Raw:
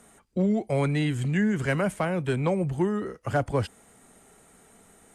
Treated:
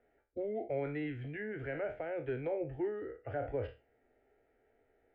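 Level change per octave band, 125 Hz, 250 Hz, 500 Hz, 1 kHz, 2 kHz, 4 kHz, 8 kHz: −17.5 dB, −16.0 dB, −8.0 dB, −13.5 dB, −12.5 dB, below −20 dB, below −35 dB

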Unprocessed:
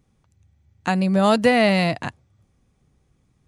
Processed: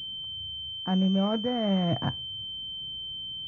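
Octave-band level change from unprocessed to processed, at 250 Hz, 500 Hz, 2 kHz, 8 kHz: −5.5 dB, −11.5 dB, −20.0 dB, below −20 dB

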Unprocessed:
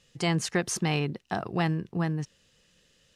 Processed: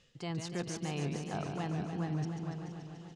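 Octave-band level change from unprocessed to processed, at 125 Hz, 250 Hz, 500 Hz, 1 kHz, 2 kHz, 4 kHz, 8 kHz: −6.5, −7.0, −8.0, −8.5, −12.5, −11.0, −11.5 decibels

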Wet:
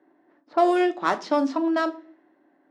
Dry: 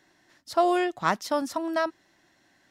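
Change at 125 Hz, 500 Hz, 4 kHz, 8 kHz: can't be measured, +3.0 dB, −0.5 dB, −6.0 dB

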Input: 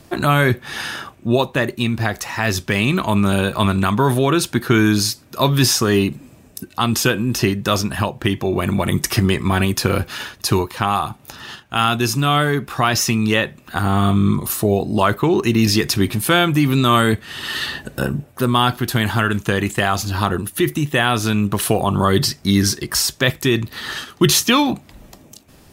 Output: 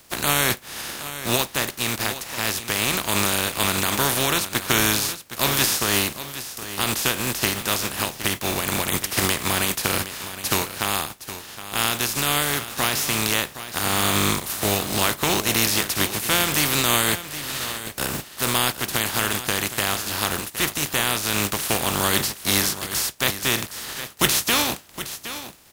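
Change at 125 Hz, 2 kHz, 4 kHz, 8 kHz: −11.5, −2.5, −0.5, +2.5 decibels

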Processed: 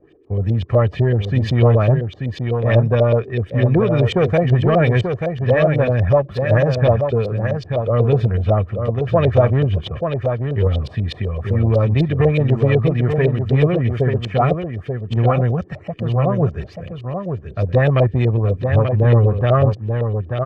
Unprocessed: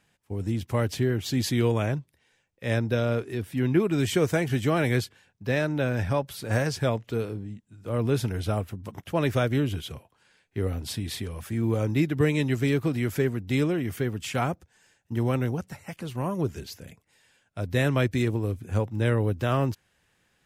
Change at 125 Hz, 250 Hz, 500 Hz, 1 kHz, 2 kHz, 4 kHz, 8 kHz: +12.5 dB, +5.5 dB, +11.0 dB, +10.0 dB, +5.0 dB, +3.0 dB, below −10 dB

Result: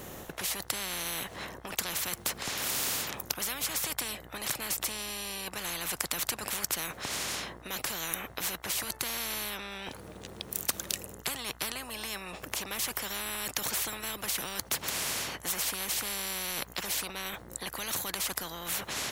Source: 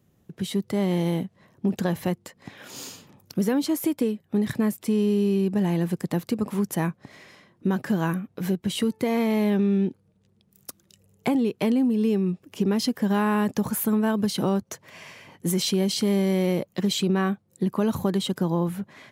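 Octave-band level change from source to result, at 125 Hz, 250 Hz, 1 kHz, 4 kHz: −20.0, −23.5, −6.0, +1.0 decibels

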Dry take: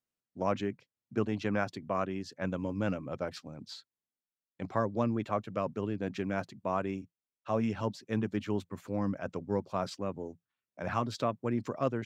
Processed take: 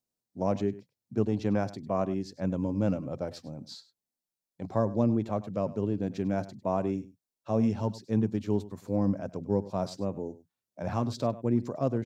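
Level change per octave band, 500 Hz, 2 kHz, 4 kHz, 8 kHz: +3.0 dB, −6.5 dB, −1.5 dB, can't be measured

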